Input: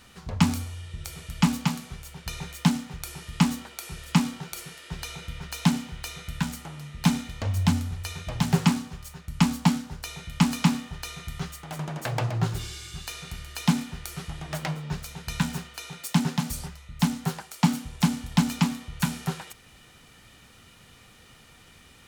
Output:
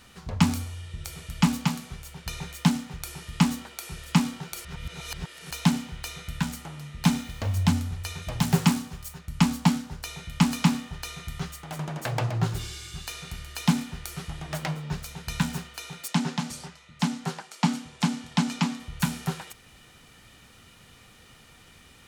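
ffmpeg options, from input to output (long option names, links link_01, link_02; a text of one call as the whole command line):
ffmpeg -i in.wav -filter_complex "[0:a]asettb=1/sr,asplit=3[link_01][link_02][link_03];[link_01]atrim=end=7.044[link_04];[link_02]atrim=start=7.04:end=7.58,asetpts=PTS-STARTPTS,afade=type=in:duration=0.004:curve=qsin,afade=type=out:start_time=0.536:duration=0.004:curve=qsin,acrusher=bits=7:mix=0:aa=0.5[link_05];[link_03]atrim=start=7.576[link_06];[link_04][link_05]acrossfade=duration=0.004:curve1=hsin:curve2=qsin[link_07];[link_07][link_06]acrossfade=duration=0.004:curve1=qsin:curve2=hsin,asettb=1/sr,asplit=3[link_08][link_09][link_10];[link_08]atrim=end=8.224[link_11];[link_09]atrim=start=8.22:end=9.19,asetpts=PTS-STARTPTS,afade=type=in:duration=0.004:curve=qsin,afade=type=out:start_time=0.966:duration=0.004:curve=qsin,highshelf=frequency=10000:gain=8.5[link_12];[link_10]atrim=start=9.186[link_13];[link_11][link_12]acrossfade=duration=0.004:curve1=hsin:curve2=qsin[link_14];[link_14][link_13]acrossfade=duration=0.004:curve1=qsin:curve2=hsin,asettb=1/sr,asplit=3[link_15][link_16][link_17];[link_15]atrim=end=16.084[link_18];[link_16]atrim=start=16.08:end=18.8,asetpts=PTS-STARTPTS,afade=type=in:duration=0.004:curve=qsin,afade=type=out:start_time=2.716:duration=0.004:curve=qsin,highpass=180,lowpass=7900[link_19];[link_17]atrim=start=18.796[link_20];[link_18][link_19]acrossfade=duration=0.004:curve1=hsin:curve2=qsin[link_21];[link_21][link_20]acrossfade=duration=0.004:curve1=qsin:curve2=hsin,asplit=3[link_22][link_23][link_24];[link_22]atrim=end=4.652[link_25];[link_23]atrim=start=4.648:end=5.512,asetpts=PTS-STARTPTS,areverse[link_26];[link_24]atrim=start=5.508[link_27];[link_25][link_26]acrossfade=duration=0.004:curve1=hsin:curve2=hsin[link_28];[link_28][link_27]acrossfade=duration=0.004:curve1=hsin:curve2=hsin" out.wav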